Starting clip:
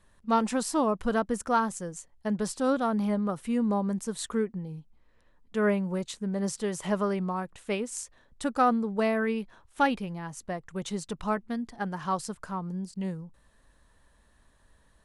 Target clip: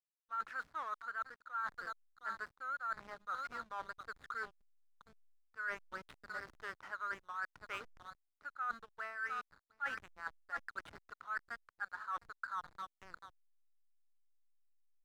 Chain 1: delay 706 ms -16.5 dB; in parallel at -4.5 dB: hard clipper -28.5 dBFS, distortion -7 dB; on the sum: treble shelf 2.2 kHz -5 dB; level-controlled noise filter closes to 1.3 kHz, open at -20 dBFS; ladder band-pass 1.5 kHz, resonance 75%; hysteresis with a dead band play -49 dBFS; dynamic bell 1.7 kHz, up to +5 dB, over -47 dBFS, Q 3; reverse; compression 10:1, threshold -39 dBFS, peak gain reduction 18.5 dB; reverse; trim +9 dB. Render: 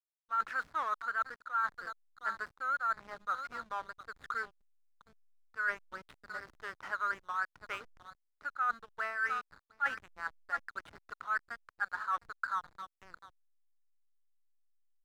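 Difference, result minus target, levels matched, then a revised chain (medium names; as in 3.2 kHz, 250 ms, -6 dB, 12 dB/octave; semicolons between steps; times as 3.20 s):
compression: peak gain reduction -7.5 dB
delay 706 ms -16.5 dB; in parallel at -4.5 dB: hard clipper -28.5 dBFS, distortion -7 dB; on the sum: treble shelf 2.2 kHz -5 dB; level-controlled noise filter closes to 1.3 kHz, open at -20 dBFS; ladder band-pass 1.5 kHz, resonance 75%; hysteresis with a dead band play -49 dBFS; dynamic bell 1.7 kHz, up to +5 dB, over -47 dBFS, Q 3; reverse; compression 10:1, threshold -47.5 dBFS, peak gain reduction 26 dB; reverse; trim +9 dB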